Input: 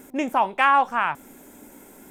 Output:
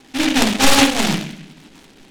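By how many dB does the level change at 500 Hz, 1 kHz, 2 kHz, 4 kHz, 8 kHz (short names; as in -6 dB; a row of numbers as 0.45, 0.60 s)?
+7.0 dB, -2.5 dB, +5.0 dB, +20.0 dB, n/a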